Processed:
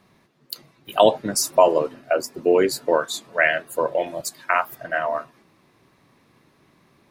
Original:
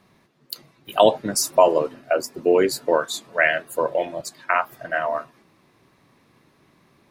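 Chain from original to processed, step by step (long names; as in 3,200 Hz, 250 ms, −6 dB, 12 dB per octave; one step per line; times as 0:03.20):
0:04.06–0:04.75: high-shelf EQ 7,900 Hz +11 dB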